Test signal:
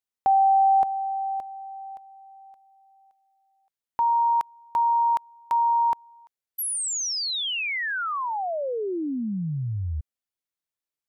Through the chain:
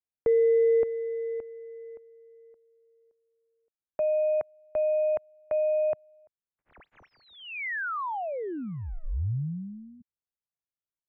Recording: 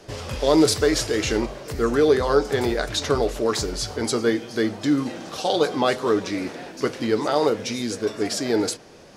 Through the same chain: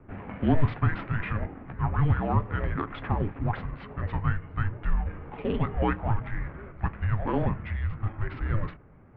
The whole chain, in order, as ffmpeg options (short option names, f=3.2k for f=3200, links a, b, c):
-af "adynamicsmooth=sensitivity=5:basefreq=1.4k,asubboost=boost=8.5:cutoff=140,highpass=f=220:t=q:w=0.5412,highpass=f=220:t=q:w=1.307,lowpass=f=2.6k:t=q:w=0.5176,lowpass=f=2.6k:t=q:w=0.7071,lowpass=f=2.6k:t=q:w=1.932,afreqshift=-320,volume=-2.5dB"